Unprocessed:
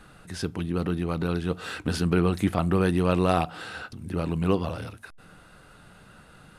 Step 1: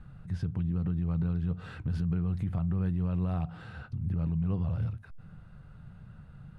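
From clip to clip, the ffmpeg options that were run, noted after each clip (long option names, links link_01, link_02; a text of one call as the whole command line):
ffmpeg -i in.wav -af "lowpass=frequency=1400:poles=1,lowshelf=frequency=210:width_type=q:width=1.5:gain=13.5,alimiter=limit=-15dB:level=0:latency=1:release=86,volume=-8dB" out.wav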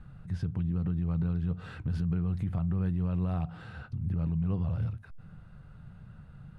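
ffmpeg -i in.wav -af anull out.wav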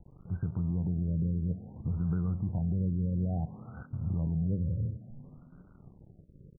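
ffmpeg -i in.wav -filter_complex "[0:a]aeval=exprs='sgn(val(0))*max(abs(val(0))-0.00299,0)':channel_layout=same,asplit=4[link_01][link_02][link_03][link_04];[link_02]adelay=369,afreqshift=31,volume=-19dB[link_05];[link_03]adelay=738,afreqshift=62,volume=-26.3dB[link_06];[link_04]adelay=1107,afreqshift=93,volume=-33.7dB[link_07];[link_01][link_05][link_06][link_07]amix=inputs=4:normalize=0,afftfilt=real='re*lt(b*sr/1024,570*pow(1600/570,0.5+0.5*sin(2*PI*0.58*pts/sr)))':imag='im*lt(b*sr/1024,570*pow(1600/570,0.5+0.5*sin(2*PI*0.58*pts/sr)))':win_size=1024:overlap=0.75" out.wav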